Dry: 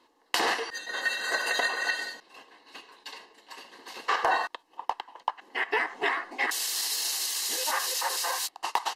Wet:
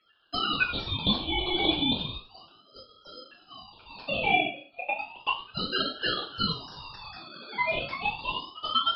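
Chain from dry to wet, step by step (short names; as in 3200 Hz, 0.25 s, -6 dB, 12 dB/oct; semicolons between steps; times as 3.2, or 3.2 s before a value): sine-wave speech; treble ducked by the level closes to 2100 Hz, closed at -26 dBFS; resonant low shelf 590 Hz +9.5 dB, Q 1.5; 3.07–4.3 flutter echo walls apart 7.4 m, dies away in 0.3 s; shoebox room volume 41 m³, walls mixed, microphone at 0.91 m; ring modulator with a swept carrier 1900 Hz, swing 20%, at 0.33 Hz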